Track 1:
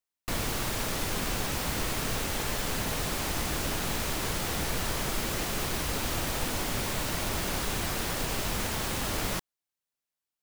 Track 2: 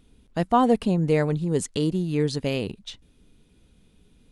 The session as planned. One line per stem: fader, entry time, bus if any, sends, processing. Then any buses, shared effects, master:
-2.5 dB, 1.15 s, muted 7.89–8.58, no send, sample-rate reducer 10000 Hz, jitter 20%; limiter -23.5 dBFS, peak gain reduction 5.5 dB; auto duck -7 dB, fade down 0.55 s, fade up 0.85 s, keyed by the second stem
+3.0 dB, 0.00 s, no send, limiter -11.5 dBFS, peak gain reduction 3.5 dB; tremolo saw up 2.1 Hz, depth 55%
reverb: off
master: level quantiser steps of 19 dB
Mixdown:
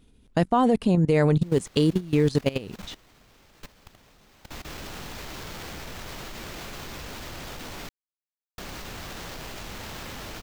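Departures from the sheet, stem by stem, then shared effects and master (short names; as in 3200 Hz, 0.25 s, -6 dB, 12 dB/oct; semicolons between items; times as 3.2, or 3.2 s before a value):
stem 1: missing limiter -23.5 dBFS, peak gain reduction 5.5 dB; stem 2 +3.0 dB -> +10.0 dB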